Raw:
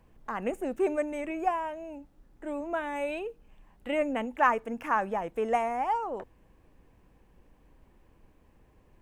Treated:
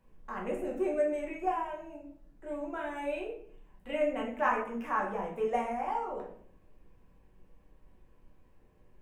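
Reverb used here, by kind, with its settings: simulated room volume 87 m³, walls mixed, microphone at 1.1 m; trim -9 dB

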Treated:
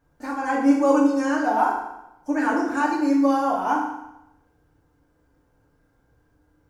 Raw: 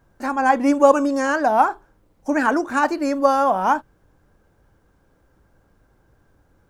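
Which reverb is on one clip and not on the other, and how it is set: FDN reverb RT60 0.88 s, low-frequency decay 1×, high-frequency decay 0.9×, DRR -4 dB; trim -10 dB

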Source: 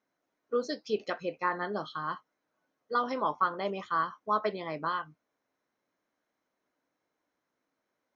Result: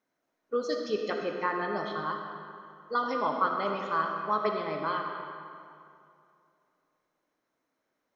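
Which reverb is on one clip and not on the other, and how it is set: algorithmic reverb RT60 2.5 s, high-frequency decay 0.7×, pre-delay 20 ms, DRR 2.5 dB

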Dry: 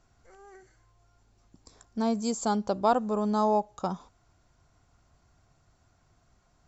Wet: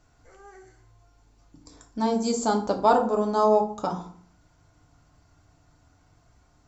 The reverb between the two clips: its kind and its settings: FDN reverb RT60 0.52 s, low-frequency decay 1.4×, high-frequency decay 0.65×, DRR 1.5 dB; trim +2 dB

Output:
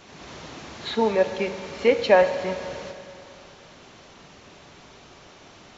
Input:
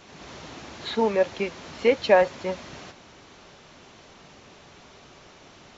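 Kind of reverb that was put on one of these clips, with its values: Schroeder reverb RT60 2.5 s, combs from 32 ms, DRR 9 dB; trim +1 dB

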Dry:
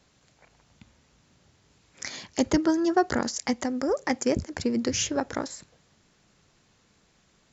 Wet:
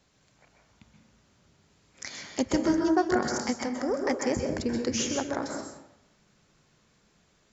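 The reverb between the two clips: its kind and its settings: plate-style reverb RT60 0.83 s, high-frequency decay 0.45×, pre-delay 115 ms, DRR 2 dB; trim -3.5 dB

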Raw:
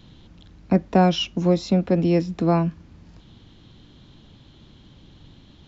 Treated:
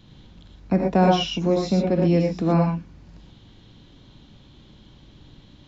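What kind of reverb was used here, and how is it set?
gated-style reverb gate 140 ms rising, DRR 0.5 dB; trim -2.5 dB

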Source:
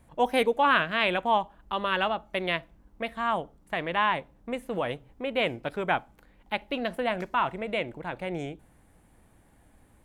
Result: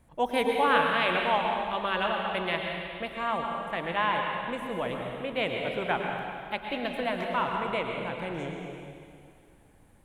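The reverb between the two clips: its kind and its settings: plate-style reverb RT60 2.3 s, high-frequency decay 1×, pre-delay 95 ms, DRR 1 dB; trim -3 dB

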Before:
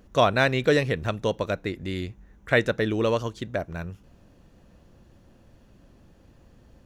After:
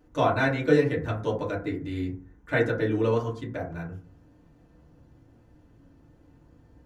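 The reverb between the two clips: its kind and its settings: FDN reverb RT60 0.42 s, low-frequency decay 1.3×, high-frequency decay 0.3×, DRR -7 dB; trim -11.5 dB

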